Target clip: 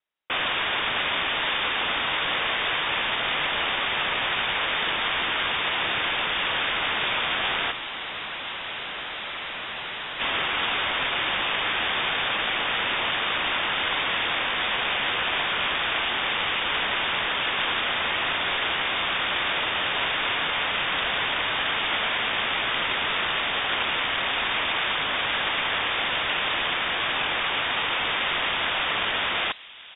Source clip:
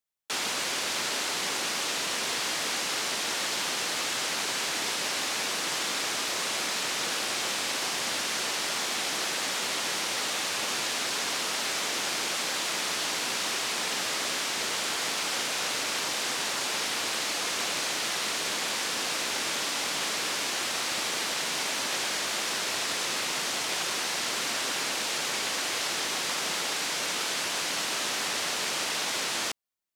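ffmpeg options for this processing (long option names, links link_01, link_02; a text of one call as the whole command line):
ffmpeg -i in.wav -filter_complex "[0:a]acontrast=56,asplit=3[link_01][link_02][link_03];[link_01]afade=type=out:start_time=7.7:duration=0.02[link_04];[link_02]asoftclip=type=hard:threshold=-30.5dB,afade=type=in:start_time=7.7:duration=0.02,afade=type=out:start_time=10.19:duration=0.02[link_05];[link_03]afade=type=in:start_time=10.19:duration=0.02[link_06];[link_04][link_05][link_06]amix=inputs=3:normalize=0,afreqshift=15,asplit=2[link_07][link_08];[link_08]adelay=1166,volume=-15dB,highshelf=frequency=4000:gain=-26.2[link_09];[link_07][link_09]amix=inputs=2:normalize=0,lowpass=frequency=3300:width_type=q:width=0.5098,lowpass=frequency=3300:width_type=q:width=0.6013,lowpass=frequency=3300:width_type=q:width=0.9,lowpass=frequency=3300:width_type=q:width=2.563,afreqshift=-3900,volume=1.5dB" out.wav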